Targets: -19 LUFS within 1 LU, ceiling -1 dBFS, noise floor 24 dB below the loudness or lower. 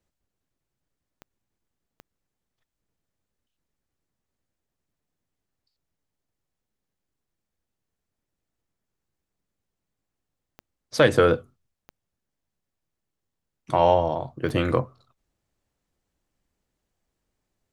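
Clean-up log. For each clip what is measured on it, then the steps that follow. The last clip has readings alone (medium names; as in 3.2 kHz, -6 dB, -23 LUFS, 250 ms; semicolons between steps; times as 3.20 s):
clicks found 5; loudness -22.5 LUFS; peak level -3.5 dBFS; loudness target -19.0 LUFS
-> de-click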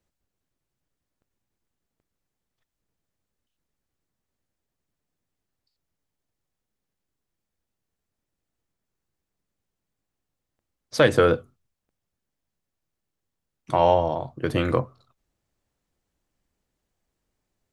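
clicks found 0; loudness -22.5 LUFS; peak level -3.5 dBFS; loudness target -19.0 LUFS
-> trim +3.5 dB; peak limiter -1 dBFS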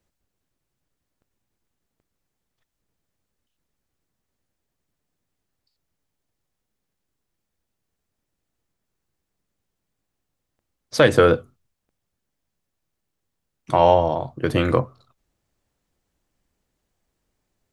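loudness -19.0 LUFS; peak level -1.0 dBFS; noise floor -80 dBFS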